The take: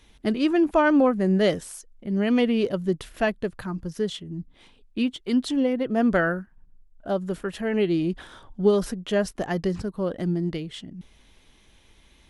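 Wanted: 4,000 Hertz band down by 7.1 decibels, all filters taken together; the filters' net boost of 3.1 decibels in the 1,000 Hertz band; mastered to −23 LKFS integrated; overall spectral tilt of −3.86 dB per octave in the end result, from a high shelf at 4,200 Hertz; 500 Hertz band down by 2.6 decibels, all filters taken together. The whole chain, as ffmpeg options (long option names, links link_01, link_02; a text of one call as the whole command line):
ffmpeg -i in.wav -af "equalizer=frequency=500:width_type=o:gain=-5,equalizer=frequency=1000:width_type=o:gain=6.5,equalizer=frequency=4000:width_type=o:gain=-8.5,highshelf=frequency=4200:gain=-4.5,volume=2.5dB" out.wav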